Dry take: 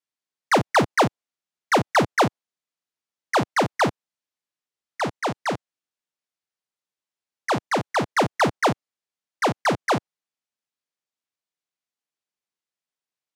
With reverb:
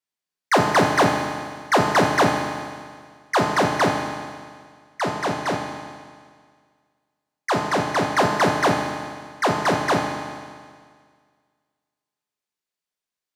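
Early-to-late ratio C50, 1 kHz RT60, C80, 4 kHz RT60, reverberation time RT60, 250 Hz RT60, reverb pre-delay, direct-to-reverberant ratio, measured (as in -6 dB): 3.0 dB, 1.9 s, 4.5 dB, 1.8 s, 1.9 s, 1.8 s, 5 ms, 0.5 dB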